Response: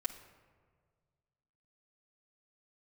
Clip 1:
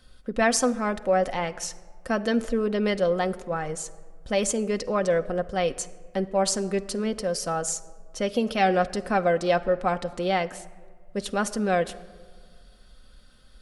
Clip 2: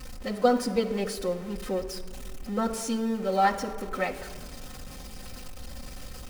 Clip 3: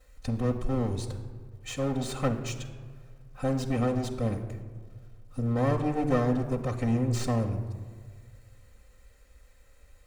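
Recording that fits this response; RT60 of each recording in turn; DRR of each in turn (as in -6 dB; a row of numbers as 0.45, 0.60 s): 2; not exponential, not exponential, not exponential; 6.5, -3.0, -11.5 dB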